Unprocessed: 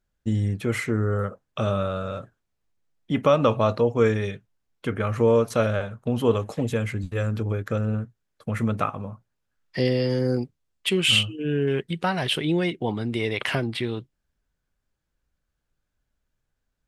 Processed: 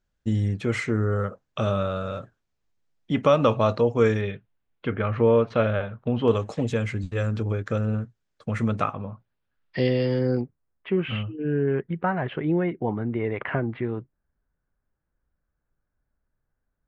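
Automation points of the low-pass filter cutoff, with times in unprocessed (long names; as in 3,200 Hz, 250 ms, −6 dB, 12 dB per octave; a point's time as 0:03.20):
low-pass filter 24 dB per octave
7,500 Hz
from 0:04.21 3,500 Hz
from 0:06.28 7,600 Hz
from 0:08.93 4,100 Hz
from 0:10.41 1,800 Hz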